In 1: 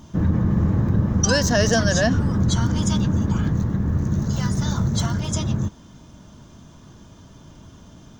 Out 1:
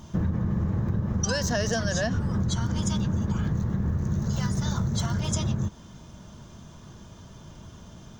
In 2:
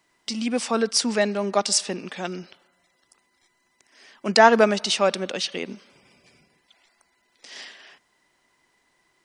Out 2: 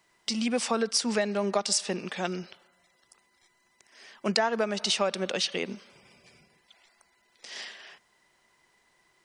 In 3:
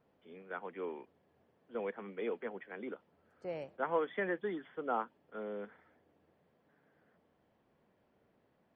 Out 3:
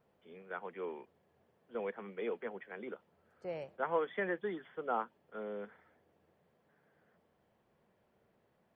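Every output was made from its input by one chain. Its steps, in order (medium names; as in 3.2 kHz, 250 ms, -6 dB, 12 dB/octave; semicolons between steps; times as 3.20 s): peaking EQ 280 Hz -9 dB 0.23 oct; compression 12:1, threshold -22 dBFS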